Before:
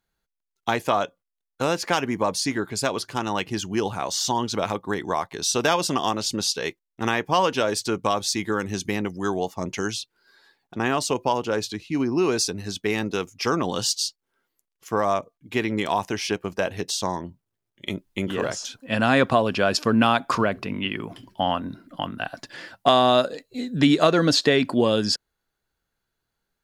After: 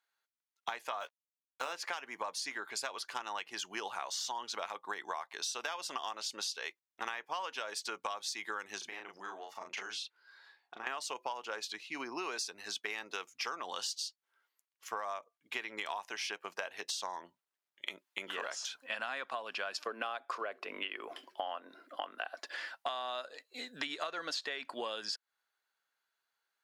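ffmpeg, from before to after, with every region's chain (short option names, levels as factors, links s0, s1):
-filter_complex "[0:a]asettb=1/sr,asplit=3[s0][s1][s2];[s0]atrim=end=1.004[s3];[s1]atrim=start=1:end=1.73,asetpts=PTS-STARTPTS,afade=t=in:d=0.004:c=qsin,afade=t=out:st=0.726:d=0.004:c=qsin,lowshelf=f=88:g=-12,acrusher=bits=6:mix=0:aa=0.5,asplit=2[s4][s5];[s5]adelay=15,volume=0.447[s6];[s4][s6]amix=inputs=2:normalize=0,atrim=end_sample=32193[s7];[s2]atrim=start=1.726[s8];[s3][s7]acrossfade=d=0.004:c1=hsin:c2=qsin[s9];[s9][s8]acrossfade=d=0.004:c1=qsin:c2=hsin,asettb=1/sr,asplit=3[s10][s11][s12];[s10]atrim=end=8.784[s13];[s11]atrim=start=8.78:end=10.87,asetpts=PTS-STARTPTS,afade=t=in:d=0.004:c=qsin,afade=t=out:st=2.086:d=0.004:c=qsin,highshelf=f=6300:g=-11,acompressor=threshold=0.0251:ratio=12:attack=3.2:release=140:knee=1:detection=peak,asplit=2[s14][s15];[s15]adelay=36,volume=0.708[s16];[s14][s16]amix=inputs=2:normalize=0,atrim=end_sample=92169[s17];[s12]atrim=start=10.866[s18];[s13][s17]acrossfade=d=0.004:c1=hsin:c2=qsin[s19];[s19][s18]acrossfade=d=0.004:c1=qsin:c2=hsin,asettb=1/sr,asplit=3[s20][s21][s22];[s20]atrim=end=19.854[s23];[s21]atrim=start=19.85:end=22.56,asetpts=PTS-STARTPTS,afade=t=in:d=0.004:c=qsin,afade=t=out:st=2.706:d=0.004:c=qsin,highpass=250,equalizer=f=430:w=0.8:g=10.5,bandreject=f=920:w=11[s24];[s22]atrim=start=22.556[s25];[s23][s24]acrossfade=d=0.004:c1=hsin:c2=qsin[s26];[s26][s25]acrossfade=d=0.004:c1=qsin:c2=hsin,highpass=960,highshelf=f=4700:g=-7.5,acompressor=threshold=0.0178:ratio=10"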